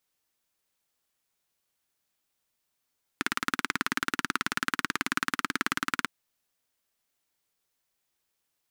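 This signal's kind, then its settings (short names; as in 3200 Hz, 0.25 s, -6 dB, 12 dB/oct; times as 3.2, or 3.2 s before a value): single-cylinder engine model, steady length 2.85 s, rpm 2200, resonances 270/1400 Hz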